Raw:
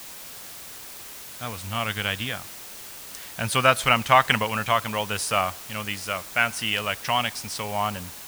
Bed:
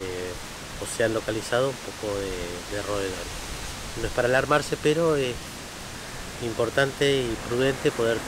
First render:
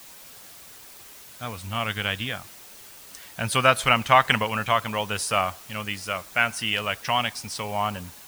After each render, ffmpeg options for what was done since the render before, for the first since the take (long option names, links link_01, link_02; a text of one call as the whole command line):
ffmpeg -i in.wav -af "afftdn=noise_reduction=6:noise_floor=-41" out.wav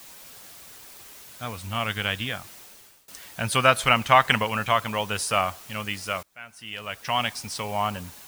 ffmpeg -i in.wav -filter_complex "[0:a]asplit=3[link_01][link_02][link_03];[link_01]atrim=end=3.08,asetpts=PTS-STARTPTS,afade=type=out:start_time=2.59:duration=0.49:silence=0.0794328[link_04];[link_02]atrim=start=3.08:end=6.23,asetpts=PTS-STARTPTS,afade=type=in:duration=0.004:curve=hsin:silence=0.0794328,afade=type=out:start_time=3.146:duration=0.004:curve=hsin:silence=0.0668344[link_05];[link_03]atrim=start=6.23,asetpts=PTS-STARTPTS,afade=type=in:duration=1.01:curve=qua:silence=0.0668344[link_06];[link_04][link_05][link_06]concat=n=3:v=0:a=1" out.wav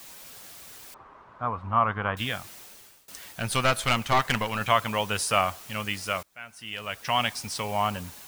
ffmpeg -i in.wav -filter_complex "[0:a]asettb=1/sr,asplit=3[link_01][link_02][link_03];[link_01]atrim=end=0.944[link_04];[link_02]atrim=start=0.94:end=2.17,asetpts=PTS-STARTPTS,afade=type=in:duration=0.004:curve=qsin,afade=type=out:start_time=1.226:duration=0.004:curve=qsin,lowpass=frequency=1100:width_type=q:width=3.5[link_05];[link_03]atrim=start=2.166[link_06];[link_04][link_05]acrossfade=duration=0.004:curve1=hsin:curve2=qsin[link_07];[link_07][link_06]acrossfade=duration=0.004:curve1=qsin:curve2=hsin,asettb=1/sr,asplit=3[link_08][link_09][link_10];[link_08]atrim=end=3.324[link_11];[link_09]atrim=start=3.32:end=4.61,asetpts=PTS-STARTPTS,afade=type=in:duration=0.004:curve=qsin,afade=type=out:start_time=1.286:duration=0.004:curve=qsin,aeval=exprs='(tanh(6.31*val(0)+0.55)-tanh(0.55))/6.31':channel_layout=same[link_12];[link_10]atrim=start=4.606[link_13];[link_11][link_12]acrossfade=duration=0.004:curve1=hsin:curve2=qsin[link_14];[link_14][link_13]acrossfade=duration=0.004:curve1=qsin:curve2=hsin" out.wav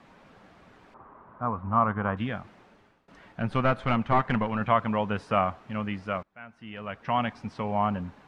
ffmpeg -i in.wav -af "lowpass=1500,equalizer=frequency=210:width_type=o:width=1:gain=6.5" out.wav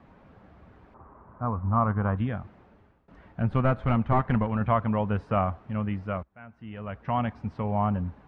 ffmpeg -i in.wav -af "lowpass=frequency=1200:poles=1,equalizer=frequency=64:width_type=o:width=1.5:gain=13" out.wav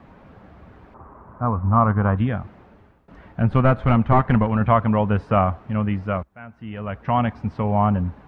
ffmpeg -i in.wav -af "volume=7dB" out.wav